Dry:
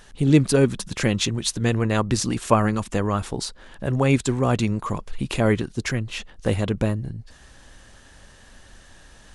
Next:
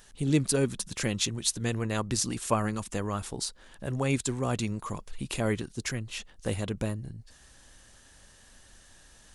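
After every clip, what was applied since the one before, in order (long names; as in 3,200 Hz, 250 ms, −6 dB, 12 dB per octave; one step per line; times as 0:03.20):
high-shelf EQ 5,300 Hz +11.5 dB
level −9 dB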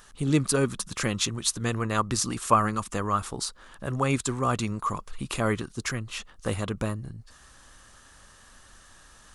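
parametric band 1,200 Hz +11 dB 0.55 octaves
level +1.5 dB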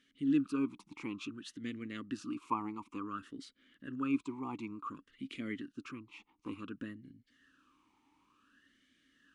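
formant filter swept between two vowels i-u 0.56 Hz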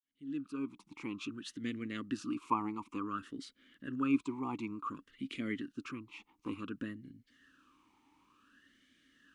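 fade in at the beginning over 1.47 s
level +2.5 dB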